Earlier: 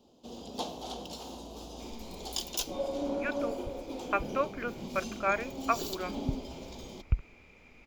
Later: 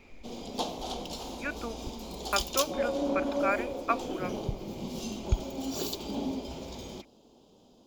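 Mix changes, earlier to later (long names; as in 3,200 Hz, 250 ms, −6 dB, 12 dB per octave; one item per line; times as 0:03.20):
speech: entry −1.80 s
background +3.5 dB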